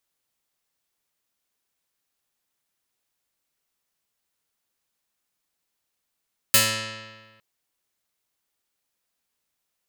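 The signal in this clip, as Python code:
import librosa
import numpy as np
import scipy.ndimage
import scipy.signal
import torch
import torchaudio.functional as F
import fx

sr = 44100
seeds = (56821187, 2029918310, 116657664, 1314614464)

y = fx.pluck(sr, length_s=0.86, note=45, decay_s=1.47, pick=0.28, brightness='medium')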